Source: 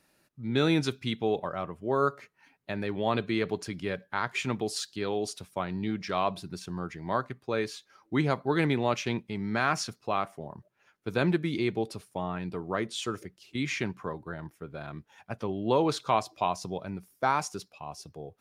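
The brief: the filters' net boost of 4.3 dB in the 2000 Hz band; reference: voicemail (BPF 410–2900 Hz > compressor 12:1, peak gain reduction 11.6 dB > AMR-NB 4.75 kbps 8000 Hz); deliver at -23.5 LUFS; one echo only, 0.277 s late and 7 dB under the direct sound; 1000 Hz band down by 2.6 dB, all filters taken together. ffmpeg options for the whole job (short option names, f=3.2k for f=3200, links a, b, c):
-af "highpass=410,lowpass=2.9k,equalizer=f=1k:t=o:g=-5.5,equalizer=f=2k:t=o:g=8.5,aecho=1:1:277:0.447,acompressor=threshold=-31dB:ratio=12,volume=16.5dB" -ar 8000 -c:a libopencore_amrnb -b:a 4750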